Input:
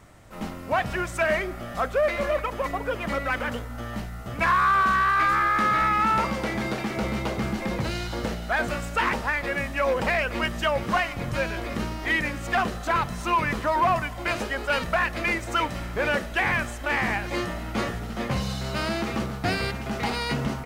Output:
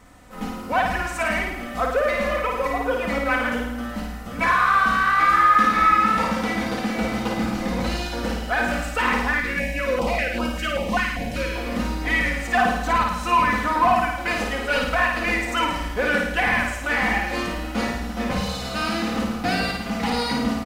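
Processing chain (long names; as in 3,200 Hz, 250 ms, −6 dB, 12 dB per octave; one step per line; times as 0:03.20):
comb filter 4 ms, depth 67%
flutter between parallel walls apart 9.3 metres, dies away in 0.83 s
0:09.40–0:11.56: notch on a step sequencer 5.1 Hz 670–2,000 Hz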